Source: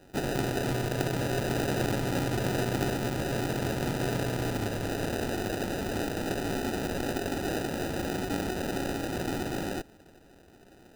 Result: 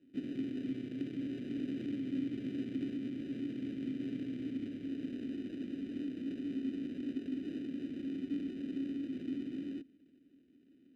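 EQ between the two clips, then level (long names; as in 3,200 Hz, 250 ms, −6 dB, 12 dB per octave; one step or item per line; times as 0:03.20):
formant filter i
tilt shelving filter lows +4.5 dB, about 650 Hz
−1.5 dB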